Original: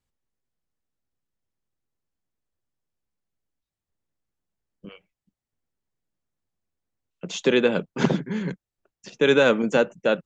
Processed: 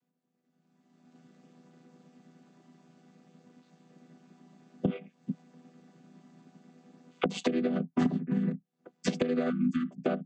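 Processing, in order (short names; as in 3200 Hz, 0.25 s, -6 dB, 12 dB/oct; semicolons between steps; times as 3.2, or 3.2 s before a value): chord vocoder minor triad, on E3; recorder AGC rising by 25 dB/s; 7.4–8.32 high shelf 5100 Hz +5.5 dB; compressor 10:1, threshold -32 dBFS, peak gain reduction 21 dB; 9.5–9.91 brick-wall FIR band-stop 340–1100 Hz; small resonant body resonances 260/730 Hz, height 9 dB, ringing for 0.1 s; gain +4.5 dB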